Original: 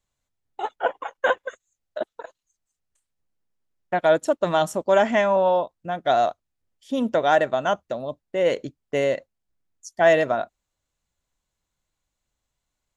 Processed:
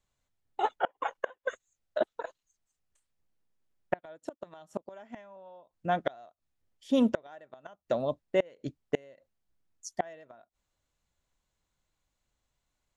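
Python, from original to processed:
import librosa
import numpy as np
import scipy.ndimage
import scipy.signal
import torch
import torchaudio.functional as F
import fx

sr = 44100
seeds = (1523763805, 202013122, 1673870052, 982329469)

y = fx.high_shelf(x, sr, hz=7600.0, db=-6.0)
y = fx.gate_flip(y, sr, shuts_db=-15.0, range_db=-31)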